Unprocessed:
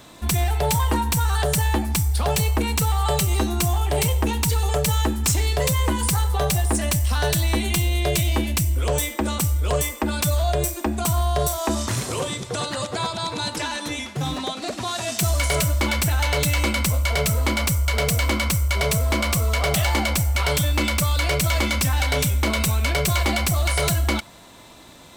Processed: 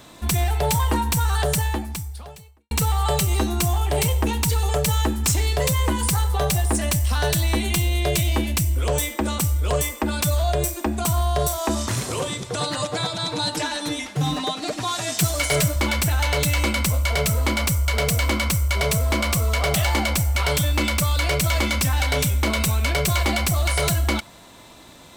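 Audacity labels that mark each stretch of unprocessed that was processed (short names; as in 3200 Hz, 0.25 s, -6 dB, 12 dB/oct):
1.510000	2.710000	fade out quadratic
12.600000	15.760000	comb 6.6 ms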